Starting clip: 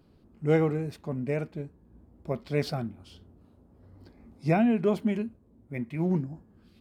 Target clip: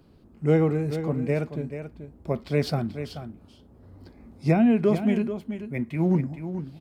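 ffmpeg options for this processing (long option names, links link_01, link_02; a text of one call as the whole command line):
ffmpeg -i in.wav -filter_complex "[0:a]acrossover=split=430[link_01][link_02];[link_02]acompressor=threshold=-30dB:ratio=6[link_03];[link_01][link_03]amix=inputs=2:normalize=0,aecho=1:1:434:0.316,volume=4.5dB" out.wav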